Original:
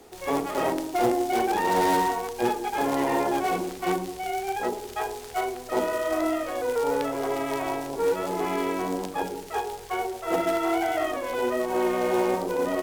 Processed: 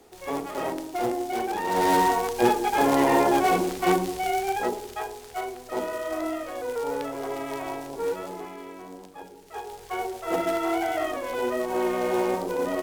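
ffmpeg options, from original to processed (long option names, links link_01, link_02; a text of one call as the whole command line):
ffmpeg -i in.wav -af "volume=17dB,afade=type=in:start_time=1.66:duration=0.5:silence=0.375837,afade=type=out:start_time=4.21:duration=0.88:silence=0.375837,afade=type=out:start_time=8.1:duration=0.44:silence=0.334965,afade=type=in:start_time=9.39:duration=0.65:silence=0.237137" out.wav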